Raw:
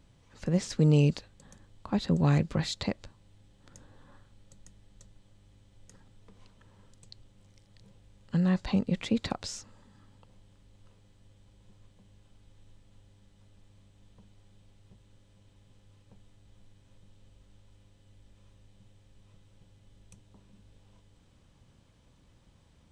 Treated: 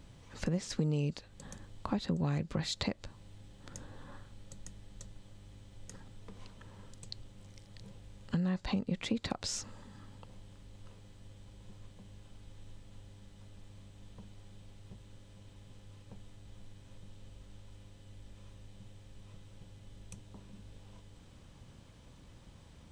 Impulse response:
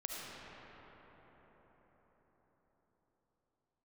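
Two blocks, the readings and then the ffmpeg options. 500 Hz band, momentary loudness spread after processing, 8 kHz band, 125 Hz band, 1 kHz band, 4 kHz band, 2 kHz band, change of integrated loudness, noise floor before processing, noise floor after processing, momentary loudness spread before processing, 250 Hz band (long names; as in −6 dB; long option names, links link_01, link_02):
−7.0 dB, 22 LU, +0.5 dB, −8.0 dB, −4.0 dB, −1.5 dB, −4.0 dB, −8.5 dB, −62 dBFS, −57 dBFS, 15 LU, −6.5 dB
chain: -af "acompressor=threshold=-38dB:ratio=4,volume=6dB"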